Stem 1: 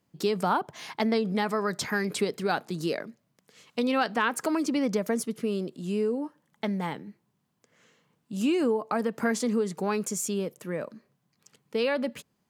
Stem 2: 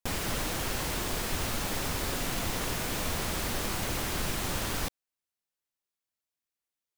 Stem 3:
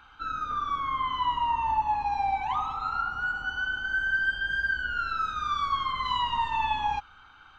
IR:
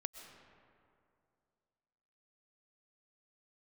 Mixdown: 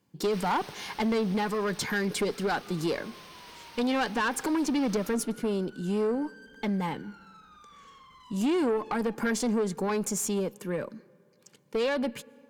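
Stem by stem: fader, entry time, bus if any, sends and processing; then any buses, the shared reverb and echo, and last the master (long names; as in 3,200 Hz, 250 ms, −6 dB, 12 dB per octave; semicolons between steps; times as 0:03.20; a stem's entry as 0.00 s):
+2.5 dB, 0.00 s, send −15.5 dB, notch comb filter 650 Hz
−10.0 dB, 0.25 s, send −4.5 dB, spectral tilt +3 dB per octave; brickwall limiter −19.5 dBFS, peak gain reduction 5 dB; Savitzky-Golay smoothing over 15 samples; automatic ducking −16 dB, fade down 1.95 s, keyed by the first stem
−19.0 dB, 2.15 s, no send, soft clipping −31 dBFS, distortion −9 dB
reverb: on, RT60 2.5 s, pre-delay 85 ms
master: tube saturation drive 22 dB, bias 0.25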